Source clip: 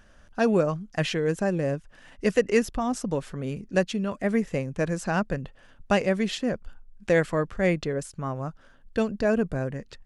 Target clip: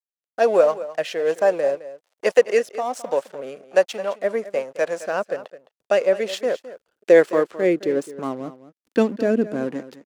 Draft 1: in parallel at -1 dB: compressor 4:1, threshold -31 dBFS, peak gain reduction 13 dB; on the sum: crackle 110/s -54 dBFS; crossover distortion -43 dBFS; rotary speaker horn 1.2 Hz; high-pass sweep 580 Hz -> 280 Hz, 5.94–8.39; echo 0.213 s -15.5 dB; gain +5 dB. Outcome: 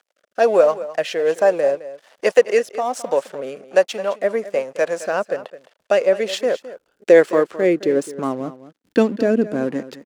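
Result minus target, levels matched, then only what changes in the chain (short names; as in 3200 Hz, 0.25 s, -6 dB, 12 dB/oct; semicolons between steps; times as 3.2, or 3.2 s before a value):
compressor: peak gain reduction +13 dB
remove: compressor 4:1, threshold -31 dBFS, peak gain reduction 13 dB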